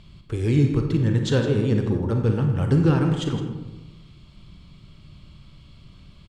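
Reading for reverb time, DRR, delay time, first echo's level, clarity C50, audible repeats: 1.0 s, 3.5 dB, 0.162 s, -13.5 dB, 5.0 dB, 1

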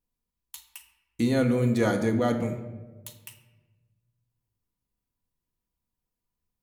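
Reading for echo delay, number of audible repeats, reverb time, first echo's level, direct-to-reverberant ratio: none, none, 1.3 s, none, 3.5 dB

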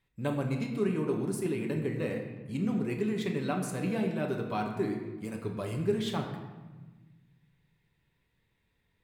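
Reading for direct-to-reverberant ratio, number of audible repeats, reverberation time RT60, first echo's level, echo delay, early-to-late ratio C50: 1.0 dB, none, 1.3 s, none, none, 5.5 dB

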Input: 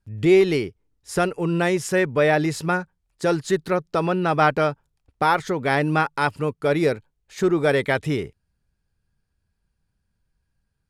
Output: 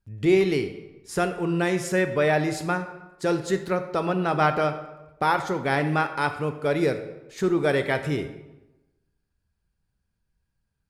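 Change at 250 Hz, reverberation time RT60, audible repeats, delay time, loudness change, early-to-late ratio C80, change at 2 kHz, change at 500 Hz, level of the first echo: -2.5 dB, 1.0 s, none, none, -3.0 dB, 12.5 dB, -3.0 dB, -3.0 dB, none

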